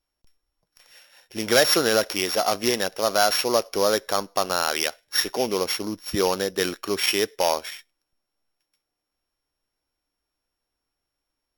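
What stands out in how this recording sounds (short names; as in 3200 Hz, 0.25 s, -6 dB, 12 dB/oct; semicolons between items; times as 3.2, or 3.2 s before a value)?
a buzz of ramps at a fixed pitch in blocks of 8 samples; Vorbis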